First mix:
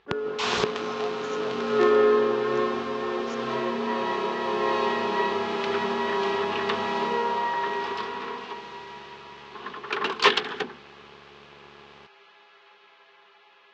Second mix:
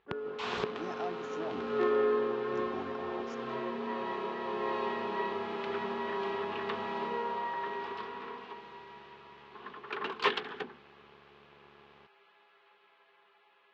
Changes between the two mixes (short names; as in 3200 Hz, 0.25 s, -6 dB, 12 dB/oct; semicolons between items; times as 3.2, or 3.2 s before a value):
background -8.5 dB; master: add bell 6500 Hz -10.5 dB 1.3 oct